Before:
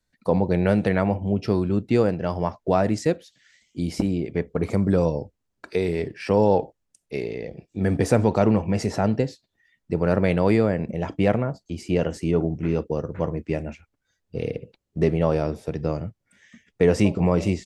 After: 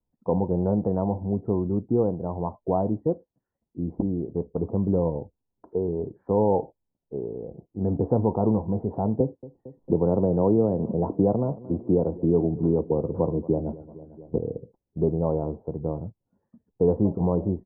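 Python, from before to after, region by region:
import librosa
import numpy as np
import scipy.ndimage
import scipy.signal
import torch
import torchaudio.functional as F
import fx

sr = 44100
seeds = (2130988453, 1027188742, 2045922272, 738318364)

y = fx.chain(x, sr, fx.peak_eq(hz=360.0, db=4.0, octaves=2.2),
    fx.echo_feedback(ms=226, feedback_pct=48, wet_db=-23.0),
    fx.band_squash(depth_pct=70), at=(9.2, 14.38))
y = scipy.signal.sosfilt(scipy.signal.ellip(4, 1.0, 60, 970.0, 'lowpass', fs=sr, output='sos'), y)
y = fx.notch(y, sr, hz=600.0, q=15.0)
y = y * librosa.db_to_amplitude(-2.5)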